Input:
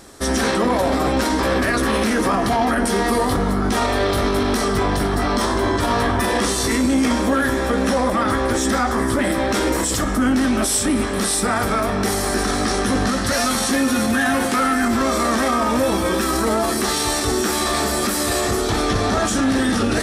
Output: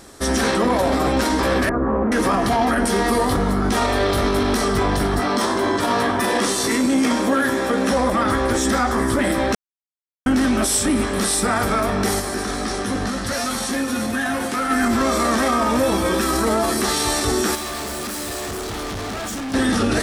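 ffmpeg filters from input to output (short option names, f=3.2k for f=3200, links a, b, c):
-filter_complex "[0:a]asettb=1/sr,asplit=3[a][b][c];[a]atrim=end=1.694[d];[b]atrim=start=1.69:end=2.12,asetpts=PTS-STARTPTS,afade=t=in:d=0.004:c=qsin,afade=t=out:st=0.426:d=0.004:c=qsin,lowpass=f=1.2k:w=0.5412,lowpass=f=1.2k:w=1.3066[e];[c]atrim=start=2.116[f];[d][e]acrossfade=d=0.004:c1=hsin:c2=qsin[g];[g][f]acrossfade=d=0.004:c1=qsin:c2=hsin,asettb=1/sr,asplit=3[h][i][j];[h]atrim=end=5.204[k];[i]atrim=start=5.2:end=7.91,asetpts=PTS-STARTPTS,afade=t=in:d=0.004:c=qsin,afade=t=out:st=2.706:d=0.004:c=qsin,highpass=150[l];[j]atrim=start=7.906[m];[k][l]acrossfade=d=0.004:c1=hsin:c2=qsin[n];[n][m]acrossfade=d=0.004:c1=qsin:c2=hsin,asplit=3[o][p][q];[o]afade=t=out:st=12.19:d=0.02[r];[p]flanger=delay=4.8:depth=6.3:regen=-72:speed=1.9:shape=sinusoidal,afade=t=in:st=12.19:d=0.02,afade=t=out:st=14.69:d=0.02[s];[q]afade=t=in:st=14.69:d=0.02[t];[r][s][t]amix=inputs=3:normalize=0,asettb=1/sr,asplit=3[u][v][w];[u]atrim=end=17.554[x];[v]atrim=start=17.55:end=19.54,asetpts=PTS-STARTPTS,afade=t=in:d=0.004:c=qsin,afade=t=out:st=1.986:d=0.004:c=qsin,volume=26.5dB,asoftclip=hard,volume=-26.5dB[y];[w]atrim=start=19.536[z];[x][y]acrossfade=d=0.004:c1=hsin:c2=qsin[aa];[aa][z]acrossfade=d=0.004:c1=qsin:c2=hsin,asplit=3[ab][ac][ad];[ab]atrim=end=9.55,asetpts=PTS-STARTPTS,afade=t=out:st=9.546:d=0.004:c=hsin[ae];[ac]atrim=start=9.55:end=10.26,asetpts=PTS-STARTPTS,volume=0[af];[ad]atrim=start=10.26,asetpts=PTS-STARTPTS,afade=t=in:d=0.004:c=hsin[ag];[ae][af][ag]concat=n=3:v=0:a=1"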